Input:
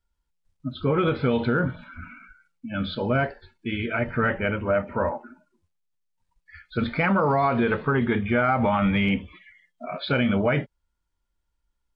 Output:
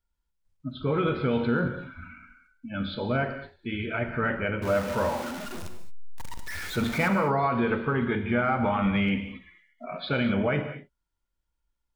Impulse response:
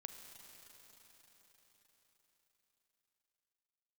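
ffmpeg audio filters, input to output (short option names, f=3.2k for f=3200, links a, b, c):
-filter_complex "[0:a]asettb=1/sr,asplit=3[a][b][c];[a]atrim=end=4.624[d];[b]atrim=start=4.62:end=7.08,asetpts=PTS-STARTPTS,afade=t=in:d=0.004:c=qsin,afade=t=out:st=2.456:d=0.004:c=qsin,aeval=exprs='val(0)+0.5*0.0422*sgn(val(0))':c=same[e];[c]atrim=start=7.076[f];[d][e]acrossfade=d=0.004:c1=hsin:c2=qsin[g];[g][f]acrossfade=d=0.004:c1=qsin:c2=hsin[h];[1:a]atrim=start_sample=2205,afade=t=out:st=0.28:d=0.01,atrim=end_sample=12789[i];[h][i]afir=irnorm=-1:irlink=0,volume=2dB"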